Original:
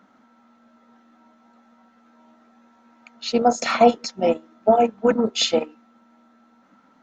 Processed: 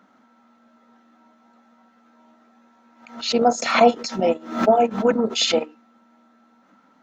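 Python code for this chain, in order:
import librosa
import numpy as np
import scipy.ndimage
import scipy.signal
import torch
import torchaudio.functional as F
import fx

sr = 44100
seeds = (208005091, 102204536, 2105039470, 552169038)

y = fx.low_shelf(x, sr, hz=85.0, db=-9.0)
y = fx.pre_swell(y, sr, db_per_s=110.0)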